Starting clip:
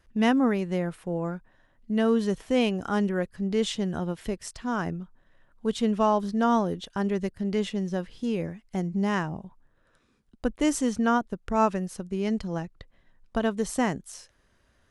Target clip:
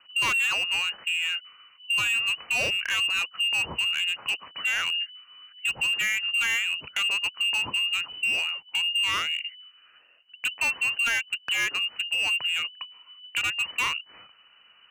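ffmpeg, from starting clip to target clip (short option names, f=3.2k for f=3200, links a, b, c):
-filter_complex "[0:a]lowpass=f=2.6k:t=q:w=0.5098,lowpass=f=2.6k:t=q:w=0.6013,lowpass=f=2.6k:t=q:w=0.9,lowpass=f=2.6k:t=q:w=2.563,afreqshift=-3000,acrossover=split=110|1600[a][b][c];[c]acompressor=threshold=-32dB:ratio=8[d];[a][b][d]amix=inputs=3:normalize=0,highpass=58,asoftclip=type=hard:threshold=-30dB,volume=8.5dB"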